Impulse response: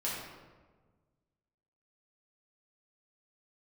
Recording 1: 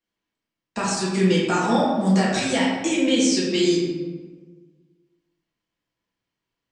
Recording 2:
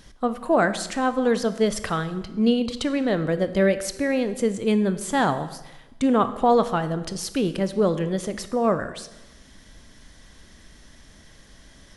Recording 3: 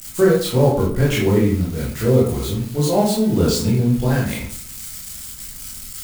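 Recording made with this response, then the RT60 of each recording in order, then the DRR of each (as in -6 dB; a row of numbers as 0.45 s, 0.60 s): 1; 1.4 s, 1.0 s, 0.55 s; -7.0 dB, 11.0 dB, -6.0 dB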